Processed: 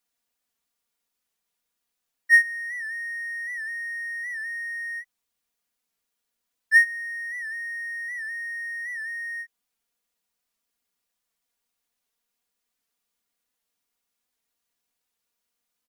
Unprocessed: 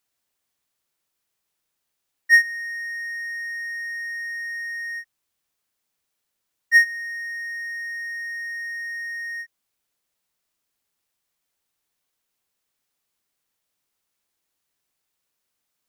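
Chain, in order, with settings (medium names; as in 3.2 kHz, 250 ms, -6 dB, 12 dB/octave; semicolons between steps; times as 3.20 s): comb 4.2 ms, depth 71%; warped record 78 rpm, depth 100 cents; trim -4.5 dB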